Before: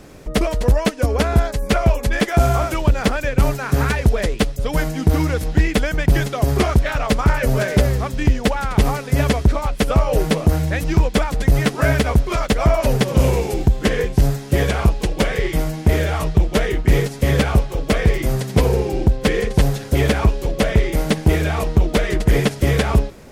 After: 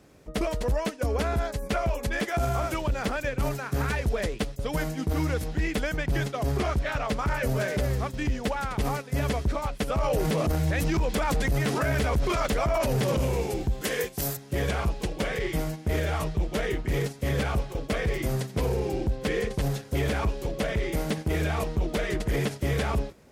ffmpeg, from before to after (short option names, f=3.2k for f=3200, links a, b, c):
-filter_complex "[0:a]asettb=1/sr,asplit=3[a][b][c];[a]atrim=end=5.974[d];[b]atrim=start=5.97:end=7.2,asetpts=PTS-STARTPTS,afade=t=in:d=0.004:c=qsin,afade=t=out:st=1.226:d=0.004:c=qsin,highshelf=f=9.5k:g=-6.5[e];[c]atrim=start=7.196[f];[d][e]acrossfade=d=0.004:c1=hsin:c2=qsin[g];[g][f]acrossfade=d=0.004:c1=qsin:c2=hsin,asettb=1/sr,asplit=3[h][i][j];[h]atrim=end=13.814[k];[i]atrim=start=13.81:end=14.37,asetpts=PTS-STARTPTS,afade=t=in:d=0.004:c=qsin,afade=t=out:st=0.556:d=0.004:c=qsin,aemphasis=mode=production:type=bsi[l];[j]atrim=start=14.366[m];[k][l]acrossfade=d=0.004:c1=hsin:c2=qsin[n];[n][m]acrossfade=d=0.004:c1=qsin:c2=hsin,asplit=3[o][p][q];[o]atrim=end=9.972[r];[p]atrim=start=9.968:end=13.172,asetpts=PTS-STARTPTS,volume=10dB[s];[q]atrim=start=13.168[t];[r][s]acrossfade=d=0.004:c1=hsin:c2=hsin[u];[u][t]acrossfade=d=0.004:c1=hsin:c2=hsin,agate=range=-7dB:threshold=-24dB:ratio=16:detection=peak,highpass=50,alimiter=limit=-11.5dB:level=0:latency=1:release=20,volume=-6.5dB"